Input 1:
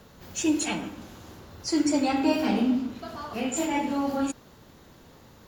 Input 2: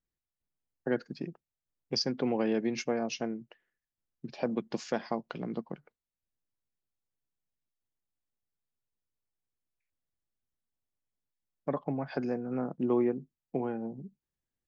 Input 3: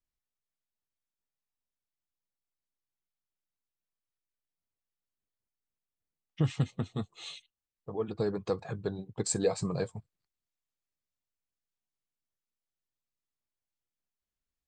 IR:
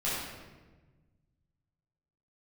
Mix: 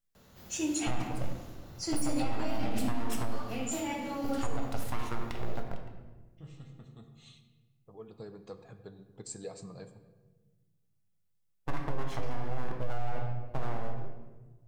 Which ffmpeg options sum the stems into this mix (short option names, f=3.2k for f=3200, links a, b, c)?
-filter_complex "[0:a]adelay=150,volume=-10.5dB,asplit=2[a][b];[b]volume=-9dB[c];[1:a]aeval=exprs='abs(val(0))':c=same,volume=-2dB,asplit=3[d][e][f];[e]volume=-9dB[g];[2:a]volume=-15.5dB,asplit=2[h][i];[i]volume=-15.5dB[j];[f]apad=whole_len=647207[k];[h][k]sidechaincompress=threshold=-51dB:ratio=8:attack=47:release=1410[l];[3:a]atrim=start_sample=2205[m];[c][g][j]amix=inputs=3:normalize=0[n];[n][m]afir=irnorm=-1:irlink=0[o];[a][d][l][o]amix=inputs=4:normalize=0,highshelf=f=5.8k:g=5.5,alimiter=limit=-20.5dB:level=0:latency=1:release=13"